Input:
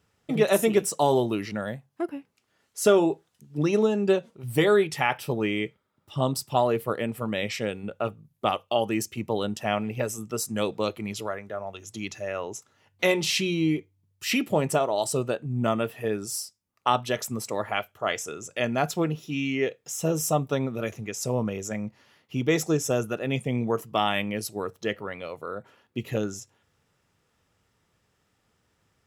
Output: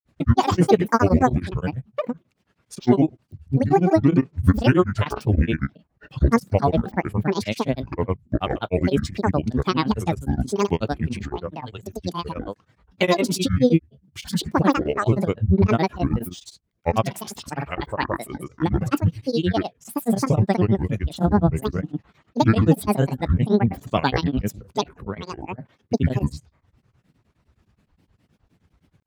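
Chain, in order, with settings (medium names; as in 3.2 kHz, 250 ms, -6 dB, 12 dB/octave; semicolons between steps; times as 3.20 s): tone controls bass +12 dB, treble -6 dB; granulator, grains 20 per s, pitch spread up and down by 12 st; tremolo of two beating tones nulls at 9.6 Hz; trim +5 dB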